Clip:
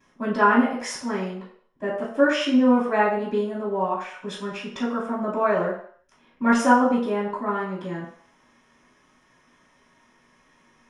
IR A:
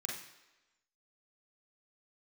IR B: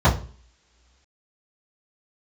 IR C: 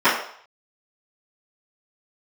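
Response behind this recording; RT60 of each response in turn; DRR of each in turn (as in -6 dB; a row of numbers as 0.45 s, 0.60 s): C; 1.1 s, no single decay rate, 0.60 s; -2.0 dB, -10.0 dB, -17.0 dB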